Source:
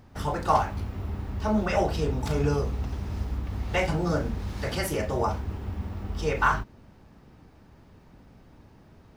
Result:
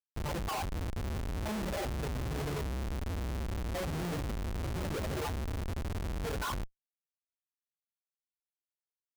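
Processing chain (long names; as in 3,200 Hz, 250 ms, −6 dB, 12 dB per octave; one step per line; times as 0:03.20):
spectral peaks only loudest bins 8
comparator with hysteresis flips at −35 dBFS
level −4 dB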